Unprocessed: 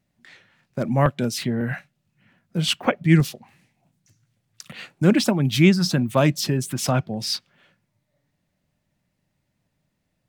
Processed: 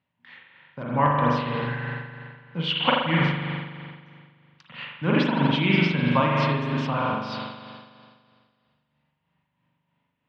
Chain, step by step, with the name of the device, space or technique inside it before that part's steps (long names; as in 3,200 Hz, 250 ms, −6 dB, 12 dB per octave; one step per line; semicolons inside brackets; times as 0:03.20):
combo amplifier with spring reverb and tremolo (spring reverb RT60 2 s, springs 41 ms, chirp 45 ms, DRR −4 dB; amplitude tremolo 3.1 Hz, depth 44%; loudspeaker in its box 100–3,500 Hz, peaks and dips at 120 Hz −3 dB, 200 Hz −8 dB, 360 Hz −10 dB, 650 Hz −7 dB, 980 Hz +10 dB, 3,000 Hz +5 dB)
level −2 dB